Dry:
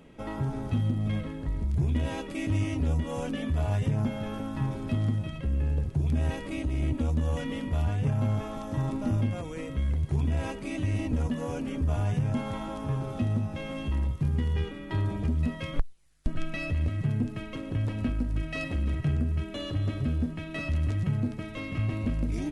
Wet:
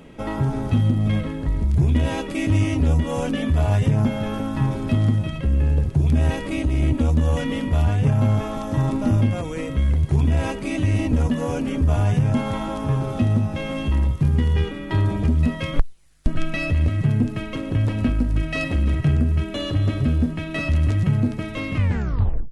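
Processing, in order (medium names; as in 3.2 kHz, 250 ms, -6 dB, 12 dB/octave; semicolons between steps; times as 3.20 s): tape stop on the ending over 0.76 s; trim +8.5 dB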